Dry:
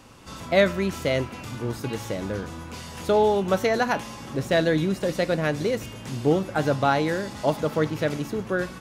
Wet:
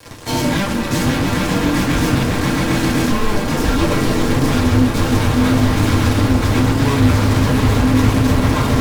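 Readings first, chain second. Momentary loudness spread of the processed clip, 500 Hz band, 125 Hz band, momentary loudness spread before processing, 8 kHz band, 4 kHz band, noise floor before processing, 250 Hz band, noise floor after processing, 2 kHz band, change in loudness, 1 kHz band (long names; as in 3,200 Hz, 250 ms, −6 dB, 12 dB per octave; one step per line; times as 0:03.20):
4 LU, +1.0 dB, +15.0 dB, 12 LU, +14.0 dB, +11.0 dB, −40 dBFS, +12.5 dB, −20 dBFS, +7.5 dB, +9.0 dB, +6.5 dB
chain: echo that builds up and dies away 134 ms, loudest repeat 8, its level −13.5 dB
downward compressor, threshold −24 dBFS, peak gain reduction 11 dB
dynamic equaliser 150 Hz, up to +7 dB, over −46 dBFS, Q 1.4
fuzz pedal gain 44 dB, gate −44 dBFS
feedback delay network reverb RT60 0.36 s, low-frequency decay 0.95×, high-frequency decay 0.7×, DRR −3 dB
frequency shifter −410 Hz
highs frequency-modulated by the lows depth 0.2 ms
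level −6 dB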